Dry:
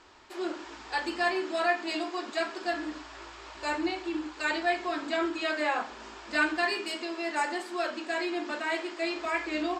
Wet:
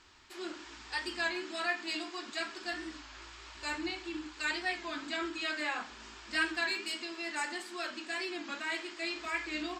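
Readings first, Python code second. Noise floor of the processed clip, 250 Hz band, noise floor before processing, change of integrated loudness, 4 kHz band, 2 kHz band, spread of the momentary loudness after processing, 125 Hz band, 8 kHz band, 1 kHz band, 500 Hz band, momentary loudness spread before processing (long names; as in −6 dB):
−51 dBFS, −7.5 dB, −47 dBFS, −5.0 dB, −1.0 dB, −3.5 dB, 11 LU, can't be measured, 0.0 dB, −9.0 dB, −10.5 dB, 9 LU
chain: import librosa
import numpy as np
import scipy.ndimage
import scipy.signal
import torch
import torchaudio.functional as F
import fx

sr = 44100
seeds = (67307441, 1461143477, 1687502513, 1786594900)

y = fx.peak_eq(x, sr, hz=580.0, db=-12.5, octaves=2.1)
y = fx.record_warp(y, sr, rpm=33.33, depth_cents=100.0)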